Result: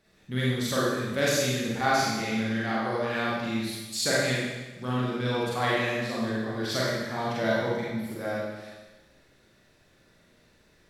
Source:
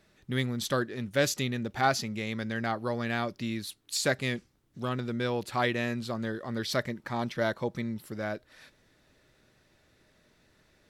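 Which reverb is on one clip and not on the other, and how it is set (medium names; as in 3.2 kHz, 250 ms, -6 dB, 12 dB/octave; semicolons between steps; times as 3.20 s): Schroeder reverb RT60 1.2 s, combs from 32 ms, DRR -7 dB; trim -4 dB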